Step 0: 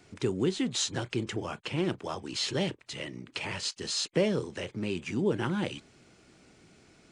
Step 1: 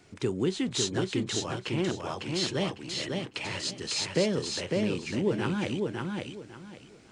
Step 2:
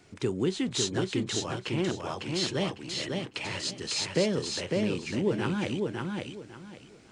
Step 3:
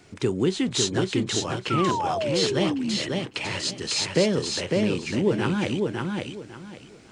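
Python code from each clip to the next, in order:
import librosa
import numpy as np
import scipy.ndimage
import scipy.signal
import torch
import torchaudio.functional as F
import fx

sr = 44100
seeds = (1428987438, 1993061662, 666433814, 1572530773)

y1 = fx.echo_feedback(x, sr, ms=552, feedback_pct=24, wet_db=-3.5)
y2 = y1
y3 = fx.spec_paint(y2, sr, seeds[0], shape='fall', start_s=1.7, length_s=1.27, low_hz=200.0, high_hz=1400.0, level_db=-32.0)
y3 = F.gain(torch.from_numpy(y3), 5.0).numpy()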